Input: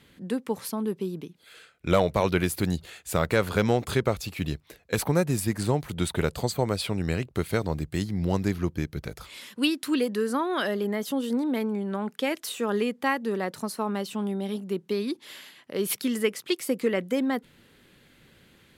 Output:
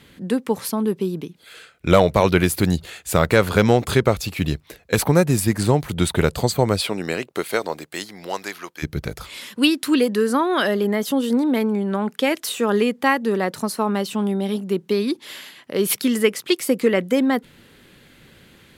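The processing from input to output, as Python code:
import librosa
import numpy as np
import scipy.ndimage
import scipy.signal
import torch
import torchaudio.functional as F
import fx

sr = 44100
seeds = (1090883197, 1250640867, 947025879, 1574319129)

y = fx.highpass(x, sr, hz=fx.line((6.8, 250.0), (8.82, 1000.0)), slope=12, at=(6.8, 8.82), fade=0.02)
y = y * librosa.db_to_amplitude(7.5)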